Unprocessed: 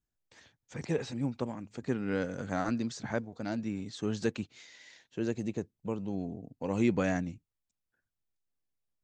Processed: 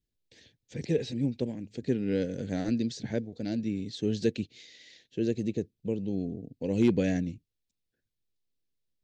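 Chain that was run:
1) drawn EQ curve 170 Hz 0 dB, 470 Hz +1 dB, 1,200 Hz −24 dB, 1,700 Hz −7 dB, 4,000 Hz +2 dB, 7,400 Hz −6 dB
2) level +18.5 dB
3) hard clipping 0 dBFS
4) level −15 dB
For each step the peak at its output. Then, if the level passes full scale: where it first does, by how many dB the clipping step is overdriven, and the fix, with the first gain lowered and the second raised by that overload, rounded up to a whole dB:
−15.5, +3.0, 0.0, −15.0 dBFS
step 2, 3.0 dB
step 2 +15.5 dB, step 4 −12 dB

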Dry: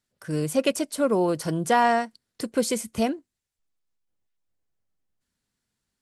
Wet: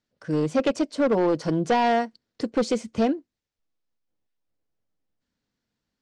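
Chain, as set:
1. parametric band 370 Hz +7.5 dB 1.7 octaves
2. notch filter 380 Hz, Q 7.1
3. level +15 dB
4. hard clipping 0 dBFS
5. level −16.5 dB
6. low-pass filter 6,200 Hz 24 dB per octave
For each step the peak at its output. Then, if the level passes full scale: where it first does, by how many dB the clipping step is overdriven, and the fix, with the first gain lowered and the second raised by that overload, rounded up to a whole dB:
−5.5, −6.0, +9.0, 0.0, −16.5, −15.5 dBFS
step 3, 9.0 dB
step 3 +6 dB, step 5 −7.5 dB

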